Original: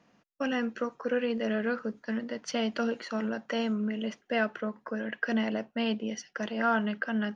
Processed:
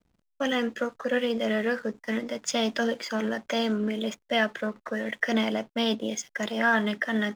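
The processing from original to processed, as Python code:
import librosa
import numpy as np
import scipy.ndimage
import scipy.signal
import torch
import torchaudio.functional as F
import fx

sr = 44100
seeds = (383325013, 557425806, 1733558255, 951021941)

y = fx.formant_shift(x, sr, semitones=2)
y = fx.backlash(y, sr, play_db=-53.0)
y = fx.high_shelf(y, sr, hz=3900.0, db=8.0)
y = F.gain(torch.from_numpy(y), 3.0).numpy()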